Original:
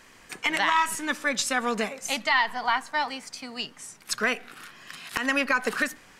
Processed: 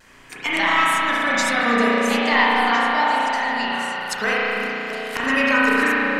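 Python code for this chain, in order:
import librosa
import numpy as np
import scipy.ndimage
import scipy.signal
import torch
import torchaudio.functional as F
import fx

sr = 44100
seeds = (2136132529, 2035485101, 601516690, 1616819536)

y = fx.echo_stepped(x, sr, ms=340, hz=240.0, octaves=1.4, feedback_pct=70, wet_db=-3.0)
y = fx.vibrato(y, sr, rate_hz=0.5, depth_cents=17.0)
y = fx.rev_spring(y, sr, rt60_s=3.5, pass_ms=(34,), chirp_ms=75, drr_db=-7.5)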